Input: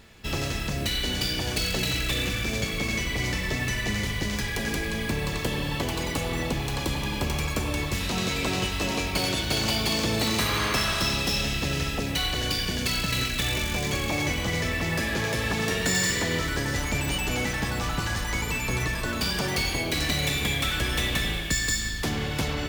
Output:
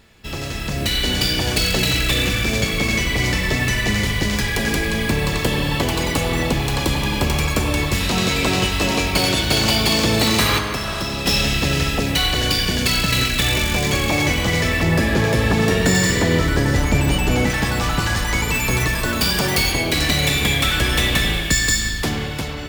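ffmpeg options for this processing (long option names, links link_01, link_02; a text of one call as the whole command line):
ffmpeg -i in.wav -filter_complex "[0:a]asettb=1/sr,asplit=3[link_01][link_02][link_03];[link_01]atrim=end=10.584[link_04];[link_02]atrim=start=10.58:end=11.26,asetpts=PTS-STARTPTS,afade=type=in:duration=0.004:curve=qsin,afade=type=out:start_time=0.676:duration=0.004:curve=qsin,acrossover=split=230|1100[link_05][link_06][link_07];[link_05]acompressor=threshold=-36dB:ratio=4[link_08];[link_06]acompressor=threshold=-36dB:ratio=4[link_09];[link_07]acompressor=threshold=-36dB:ratio=4[link_10];[link_08][link_09][link_10]amix=inputs=3:normalize=0[link_11];[link_03]atrim=start=11.256[link_12];[link_04][link_11]acrossfade=duration=0.004:curve1=hsin:curve2=qsin[link_13];[link_13][link_12]acrossfade=duration=0.004:curve1=qsin:curve2=hsin,asettb=1/sr,asplit=3[link_14][link_15][link_16];[link_14]atrim=end=14.834[link_17];[link_15]atrim=start=14.83:end=17.5,asetpts=PTS-STARTPTS,afade=type=in:duration=0.004:curve=qsin,afade=type=out:start_time=2.666:duration=0.004:curve=qsin,tiltshelf=frequency=970:gain=4[link_18];[link_16]atrim=start=17.496[link_19];[link_17][link_18]acrossfade=duration=0.004:curve1=hsin:curve2=qsin[link_20];[link_20][link_19]acrossfade=duration=0.004:curve1=qsin:curve2=hsin,asettb=1/sr,asplit=3[link_21][link_22][link_23];[link_21]atrim=end=18.544[link_24];[link_22]atrim=start=18.54:end=19.72,asetpts=PTS-STARTPTS,afade=type=in:duration=0.004:curve=qsin,afade=type=out:start_time=1.176:duration=0.004:curve=qsin,highshelf=frequency=11000:gain=8[link_25];[link_23]atrim=start=19.716[link_26];[link_24][link_25]acrossfade=duration=0.004:curve1=hsin:curve2=qsin[link_27];[link_27][link_26]acrossfade=duration=0.004:curve1=qsin:curve2=hsin,bandreject=frequency=6100:width=26,dynaudnorm=framelen=110:gausssize=13:maxgain=8.5dB" out.wav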